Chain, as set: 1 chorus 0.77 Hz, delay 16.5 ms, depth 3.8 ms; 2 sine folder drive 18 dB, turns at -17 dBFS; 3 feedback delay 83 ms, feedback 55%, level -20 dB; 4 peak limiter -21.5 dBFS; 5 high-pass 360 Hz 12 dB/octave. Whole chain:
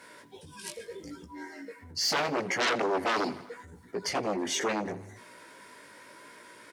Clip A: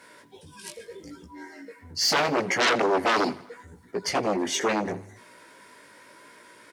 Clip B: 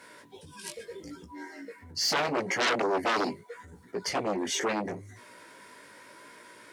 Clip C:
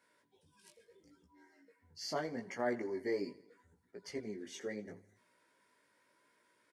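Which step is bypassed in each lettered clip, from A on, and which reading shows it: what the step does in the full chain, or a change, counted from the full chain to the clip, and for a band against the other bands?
4, mean gain reduction 2.0 dB; 3, momentary loudness spread change -4 LU; 2, crest factor change +4.5 dB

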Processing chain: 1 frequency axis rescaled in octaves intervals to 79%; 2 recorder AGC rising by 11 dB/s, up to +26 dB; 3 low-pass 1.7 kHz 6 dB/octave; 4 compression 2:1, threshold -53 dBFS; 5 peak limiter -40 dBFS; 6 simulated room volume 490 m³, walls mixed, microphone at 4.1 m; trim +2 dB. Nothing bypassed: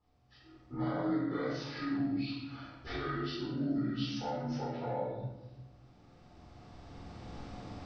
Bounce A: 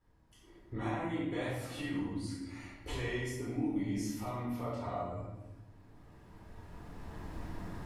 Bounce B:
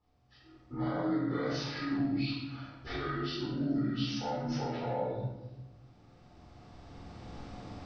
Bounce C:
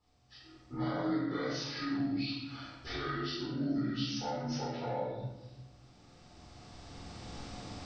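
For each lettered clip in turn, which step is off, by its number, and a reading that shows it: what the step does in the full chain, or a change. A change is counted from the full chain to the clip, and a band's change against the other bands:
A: 1, 2 kHz band +3.0 dB; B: 4, mean gain reduction 6.5 dB; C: 3, 4 kHz band +5.0 dB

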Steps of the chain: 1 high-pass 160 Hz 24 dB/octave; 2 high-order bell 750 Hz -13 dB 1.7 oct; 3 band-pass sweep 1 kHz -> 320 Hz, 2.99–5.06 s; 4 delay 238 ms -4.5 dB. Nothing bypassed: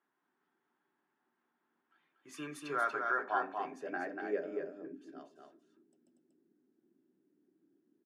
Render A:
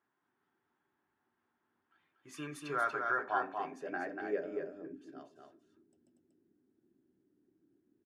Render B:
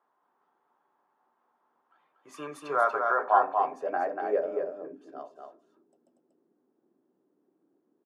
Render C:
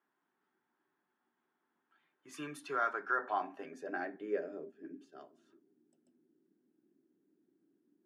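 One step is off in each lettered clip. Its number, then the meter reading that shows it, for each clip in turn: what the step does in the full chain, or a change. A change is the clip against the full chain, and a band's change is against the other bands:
1, 125 Hz band +4.5 dB; 2, 250 Hz band -9.0 dB; 4, crest factor change +1.5 dB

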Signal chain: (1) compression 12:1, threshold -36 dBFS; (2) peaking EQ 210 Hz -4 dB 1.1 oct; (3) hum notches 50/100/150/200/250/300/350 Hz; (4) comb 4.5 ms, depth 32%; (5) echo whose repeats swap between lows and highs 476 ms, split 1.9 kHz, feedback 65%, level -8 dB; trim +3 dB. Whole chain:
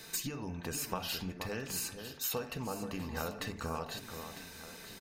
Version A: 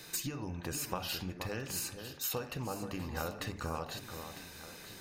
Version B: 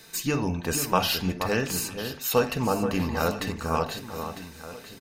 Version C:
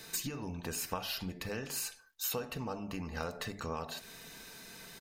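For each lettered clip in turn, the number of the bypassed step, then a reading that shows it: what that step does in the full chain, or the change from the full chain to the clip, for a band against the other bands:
4, 125 Hz band +2.0 dB; 1, mean gain reduction 8.0 dB; 5, momentary loudness spread change +3 LU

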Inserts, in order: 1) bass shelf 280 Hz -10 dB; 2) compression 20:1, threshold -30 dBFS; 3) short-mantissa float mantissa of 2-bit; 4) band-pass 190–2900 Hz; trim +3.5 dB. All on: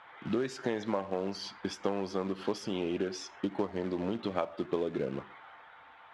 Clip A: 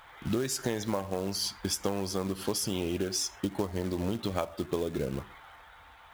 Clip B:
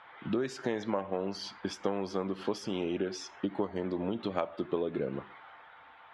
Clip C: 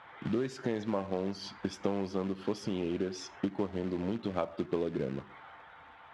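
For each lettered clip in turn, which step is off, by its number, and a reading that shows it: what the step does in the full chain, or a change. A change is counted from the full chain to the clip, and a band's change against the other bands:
4, 8 kHz band +14.5 dB; 3, distortion -20 dB; 1, 125 Hz band +5.0 dB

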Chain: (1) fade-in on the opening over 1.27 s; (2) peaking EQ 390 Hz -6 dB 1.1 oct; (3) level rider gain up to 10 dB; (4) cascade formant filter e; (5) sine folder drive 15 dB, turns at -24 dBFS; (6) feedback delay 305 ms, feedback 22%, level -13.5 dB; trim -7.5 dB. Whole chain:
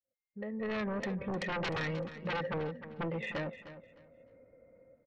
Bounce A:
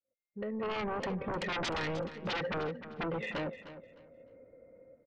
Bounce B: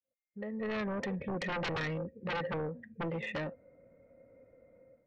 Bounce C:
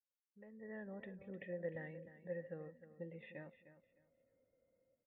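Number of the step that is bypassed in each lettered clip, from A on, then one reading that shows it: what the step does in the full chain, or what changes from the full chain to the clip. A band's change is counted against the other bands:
2, 4 kHz band +4.0 dB; 6, momentary loudness spread change -5 LU; 5, crest factor change +11.0 dB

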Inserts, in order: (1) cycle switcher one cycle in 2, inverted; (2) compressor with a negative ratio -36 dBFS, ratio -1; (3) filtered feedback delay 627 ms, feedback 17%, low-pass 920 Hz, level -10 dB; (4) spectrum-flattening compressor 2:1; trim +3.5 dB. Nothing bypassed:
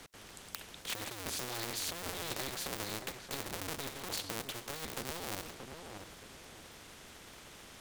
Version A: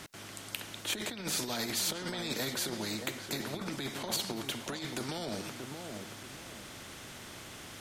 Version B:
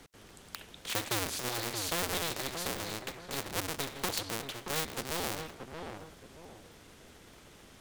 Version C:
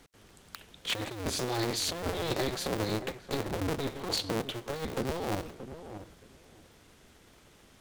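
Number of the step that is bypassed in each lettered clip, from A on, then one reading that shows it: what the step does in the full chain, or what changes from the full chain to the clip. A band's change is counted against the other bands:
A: 1, 250 Hz band +4.5 dB; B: 2, momentary loudness spread change +8 LU; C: 4, 8 kHz band -7.5 dB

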